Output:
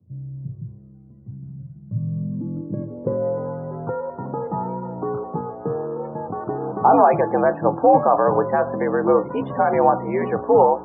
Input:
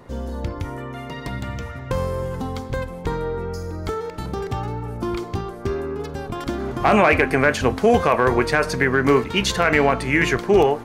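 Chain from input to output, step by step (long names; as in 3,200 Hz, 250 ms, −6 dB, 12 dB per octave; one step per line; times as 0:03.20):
frequency shifter +70 Hz
low-pass filter sweep 100 Hz → 860 Hz, 0:01.81–0:03.50
spectral peaks only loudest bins 64
level −2.5 dB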